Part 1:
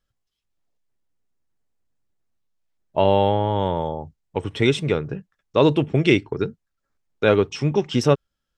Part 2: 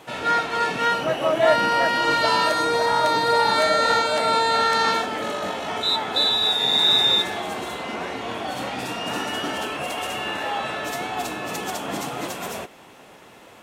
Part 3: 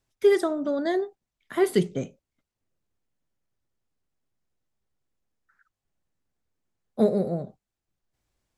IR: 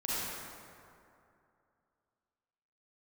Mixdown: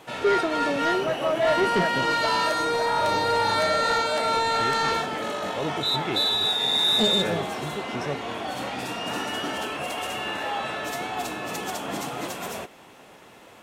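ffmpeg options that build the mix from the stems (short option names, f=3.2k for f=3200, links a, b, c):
-filter_complex "[0:a]volume=-14dB[a];[1:a]volume=-2dB[b];[2:a]lowpass=6.9k,volume=-0.5dB[c];[a][b][c]amix=inputs=3:normalize=0,asoftclip=type=tanh:threshold=-15dB"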